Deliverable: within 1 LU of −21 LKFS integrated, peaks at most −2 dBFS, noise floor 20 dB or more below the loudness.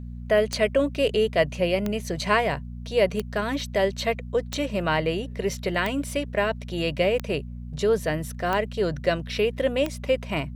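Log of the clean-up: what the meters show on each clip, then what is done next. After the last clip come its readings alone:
number of clicks 8; mains hum 60 Hz; hum harmonics up to 240 Hz; level of the hum −34 dBFS; integrated loudness −25.5 LKFS; sample peak −7.5 dBFS; target loudness −21.0 LKFS
→ click removal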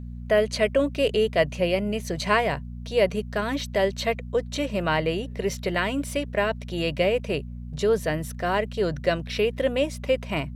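number of clicks 0; mains hum 60 Hz; hum harmonics up to 240 Hz; level of the hum −34 dBFS
→ hum removal 60 Hz, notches 4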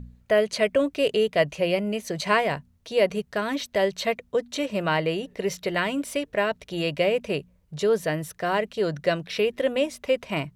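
mains hum none found; integrated loudness −25.5 LKFS; sample peak −7.5 dBFS; target loudness −21.0 LKFS
→ level +4.5 dB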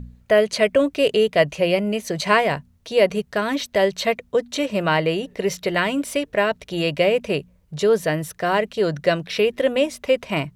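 integrated loudness −21.0 LKFS; sample peak −3.0 dBFS; background noise floor −57 dBFS

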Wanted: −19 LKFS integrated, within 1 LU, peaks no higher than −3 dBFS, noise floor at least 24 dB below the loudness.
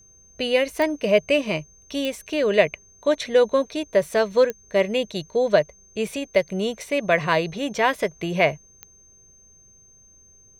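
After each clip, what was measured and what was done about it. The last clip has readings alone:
number of clicks 4; interfering tone 6,300 Hz; level of the tone −51 dBFS; integrated loudness −22.5 LKFS; sample peak −3.0 dBFS; target loudness −19.0 LKFS
→ click removal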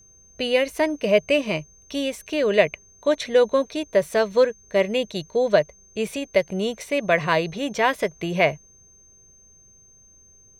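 number of clicks 0; interfering tone 6,300 Hz; level of the tone −51 dBFS
→ notch filter 6,300 Hz, Q 30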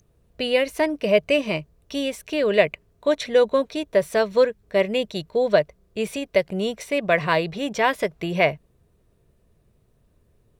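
interfering tone none found; integrated loudness −22.5 LKFS; sample peak −3.0 dBFS; target loudness −19.0 LKFS
→ level +3.5 dB
brickwall limiter −3 dBFS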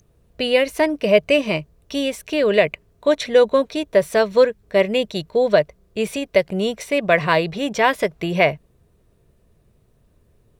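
integrated loudness −19.5 LKFS; sample peak −3.0 dBFS; background noise floor −60 dBFS

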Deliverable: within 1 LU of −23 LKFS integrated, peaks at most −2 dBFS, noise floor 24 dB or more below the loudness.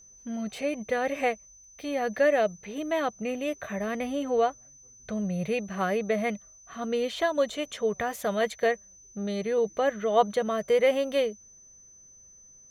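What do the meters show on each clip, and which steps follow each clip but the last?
interfering tone 6,100 Hz; level of the tone −51 dBFS; integrated loudness −28.5 LKFS; sample peak −10.0 dBFS; target loudness −23.0 LKFS
→ notch filter 6,100 Hz, Q 30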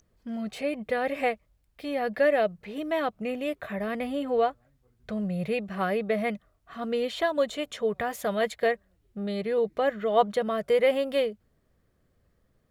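interfering tone none found; integrated loudness −28.5 LKFS; sample peak −10.0 dBFS; target loudness −23.0 LKFS
→ level +5.5 dB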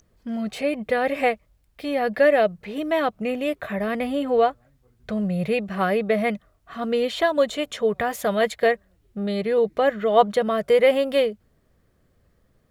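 integrated loudness −23.0 LKFS; sample peak −4.5 dBFS; background noise floor −64 dBFS

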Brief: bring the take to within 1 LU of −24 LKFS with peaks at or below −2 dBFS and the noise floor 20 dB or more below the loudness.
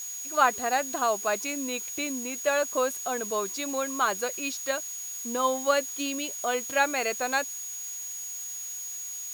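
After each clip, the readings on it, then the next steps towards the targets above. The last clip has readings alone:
interfering tone 6,700 Hz; level of the tone −35 dBFS; background noise floor −37 dBFS; target noise floor −49 dBFS; integrated loudness −28.5 LKFS; sample peak −7.0 dBFS; target loudness −24.0 LKFS
→ notch filter 6,700 Hz, Q 30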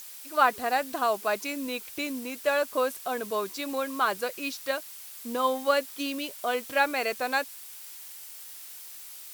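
interfering tone none found; background noise floor −44 dBFS; target noise floor −49 dBFS
→ noise reduction from a noise print 6 dB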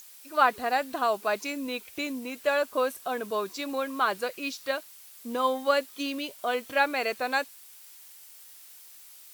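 background noise floor −50 dBFS; integrated loudness −29.0 LKFS; sample peak −7.5 dBFS; target loudness −24.0 LKFS
→ level +5 dB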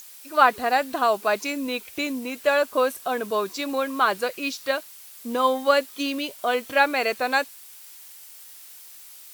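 integrated loudness −24.0 LKFS; sample peak −2.5 dBFS; background noise floor −45 dBFS

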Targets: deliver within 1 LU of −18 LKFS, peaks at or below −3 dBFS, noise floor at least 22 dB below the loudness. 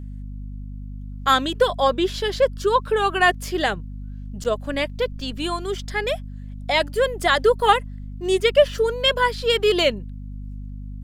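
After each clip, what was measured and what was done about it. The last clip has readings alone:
number of dropouts 1; longest dropout 8.3 ms; mains hum 50 Hz; hum harmonics up to 250 Hz; level of the hum −31 dBFS; integrated loudness −21.0 LKFS; sample peak −1.5 dBFS; target loudness −18.0 LKFS
→ repair the gap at 0:04.44, 8.3 ms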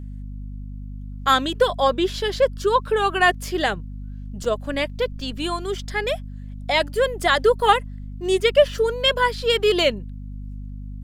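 number of dropouts 0; mains hum 50 Hz; hum harmonics up to 250 Hz; level of the hum −31 dBFS
→ hum removal 50 Hz, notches 5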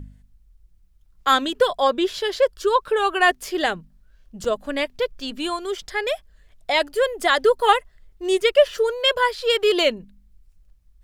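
mains hum none found; integrated loudness −21.0 LKFS; sample peak −1.5 dBFS; target loudness −18.0 LKFS
→ level +3 dB
brickwall limiter −3 dBFS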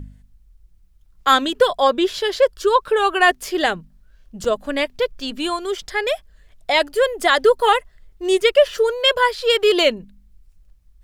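integrated loudness −18.5 LKFS; sample peak −3.0 dBFS; background noise floor −54 dBFS

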